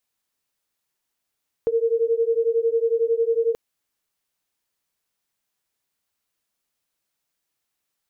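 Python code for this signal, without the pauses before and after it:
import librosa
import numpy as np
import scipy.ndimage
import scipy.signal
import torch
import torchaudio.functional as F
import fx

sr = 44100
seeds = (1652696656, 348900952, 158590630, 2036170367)

y = fx.two_tone_beats(sr, length_s=1.88, hz=454.0, beat_hz=11.0, level_db=-21.0)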